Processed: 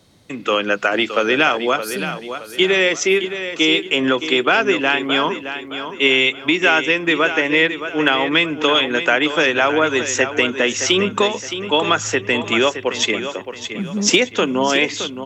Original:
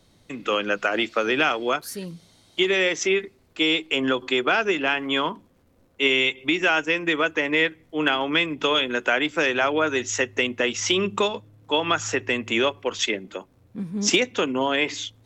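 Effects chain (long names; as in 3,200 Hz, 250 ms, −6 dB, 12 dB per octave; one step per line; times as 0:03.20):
high-pass filter 67 Hz
on a send: repeating echo 618 ms, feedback 36%, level −10 dB
on the sum: level +5.5 dB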